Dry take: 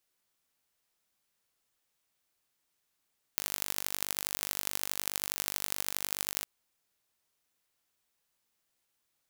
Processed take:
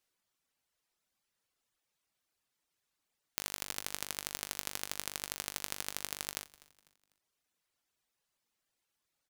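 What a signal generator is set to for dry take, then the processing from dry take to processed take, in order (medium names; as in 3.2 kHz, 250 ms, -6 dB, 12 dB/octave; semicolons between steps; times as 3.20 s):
pulse train 49.5 per s, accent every 4, -3 dBFS 3.06 s
reverb removal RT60 0.95 s; treble shelf 12 kHz -8.5 dB; frequency-shifting echo 249 ms, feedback 39%, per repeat -110 Hz, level -22 dB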